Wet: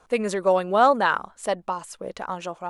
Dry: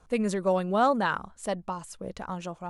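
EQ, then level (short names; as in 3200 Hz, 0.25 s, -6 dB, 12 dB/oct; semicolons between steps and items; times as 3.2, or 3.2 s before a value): tone controls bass -13 dB, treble -3 dB; +6.5 dB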